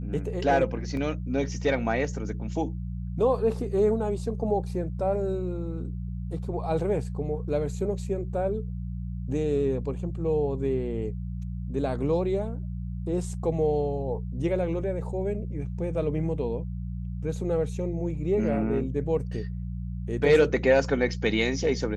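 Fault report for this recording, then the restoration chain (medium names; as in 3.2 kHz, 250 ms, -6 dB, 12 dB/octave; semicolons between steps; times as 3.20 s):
hum 60 Hz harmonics 3 -33 dBFS
0.97 s: dropout 2.3 ms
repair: de-hum 60 Hz, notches 3; interpolate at 0.97 s, 2.3 ms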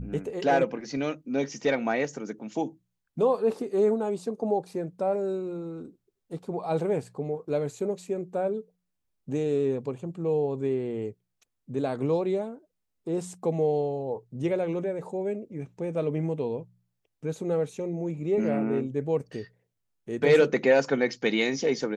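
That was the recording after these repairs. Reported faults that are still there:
nothing left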